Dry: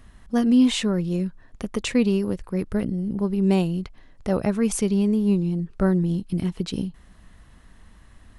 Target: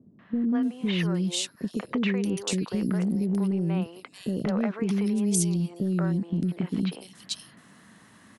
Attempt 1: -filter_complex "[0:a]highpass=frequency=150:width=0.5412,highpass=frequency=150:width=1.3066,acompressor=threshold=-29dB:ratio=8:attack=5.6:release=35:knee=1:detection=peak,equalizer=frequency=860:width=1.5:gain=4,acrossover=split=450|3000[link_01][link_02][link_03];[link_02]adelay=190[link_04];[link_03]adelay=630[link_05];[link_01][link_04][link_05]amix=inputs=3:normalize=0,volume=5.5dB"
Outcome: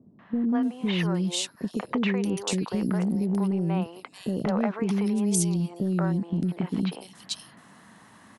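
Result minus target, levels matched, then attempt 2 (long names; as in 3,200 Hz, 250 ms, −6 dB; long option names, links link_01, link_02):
1,000 Hz band +5.0 dB
-filter_complex "[0:a]highpass=frequency=150:width=0.5412,highpass=frequency=150:width=1.3066,acompressor=threshold=-29dB:ratio=8:attack=5.6:release=35:knee=1:detection=peak,equalizer=frequency=860:width=1.5:gain=-3,acrossover=split=450|3000[link_01][link_02][link_03];[link_02]adelay=190[link_04];[link_03]adelay=630[link_05];[link_01][link_04][link_05]amix=inputs=3:normalize=0,volume=5.5dB"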